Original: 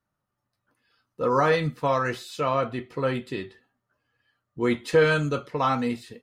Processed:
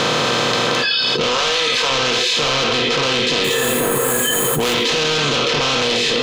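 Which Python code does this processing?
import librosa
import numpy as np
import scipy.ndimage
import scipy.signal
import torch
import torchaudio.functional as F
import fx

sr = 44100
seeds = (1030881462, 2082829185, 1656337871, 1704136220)

y = fx.bin_compress(x, sr, power=0.2)
y = fx.low_shelf(y, sr, hz=430.0, db=-8.5, at=(1.27, 1.91))
y = fx.resample_bad(y, sr, factor=4, down='filtered', up='hold', at=(3.44, 4.74))
y = fx.noise_reduce_blind(y, sr, reduce_db=24)
y = 10.0 ** (-19.5 / 20.0) * np.tanh(y / 10.0 ** (-19.5 / 20.0))
y = fx.band_shelf(y, sr, hz=4300.0, db=14.0, octaves=1.7)
y = fx.echo_split(y, sr, split_hz=1700.0, low_ms=486, high_ms=85, feedback_pct=52, wet_db=-12.0)
y = fx.env_flatten(y, sr, amount_pct=100)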